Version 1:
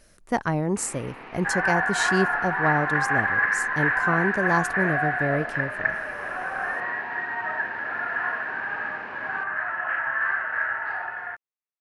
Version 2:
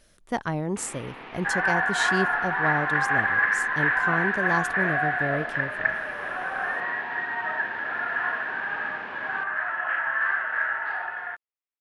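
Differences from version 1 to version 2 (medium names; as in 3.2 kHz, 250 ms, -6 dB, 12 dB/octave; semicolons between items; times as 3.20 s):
speech -3.5 dB; second sound: add bass shelf 160 Hz -8.5 dB; master: add peaking EQ 3.4 kHz +8 dB 0.36 oct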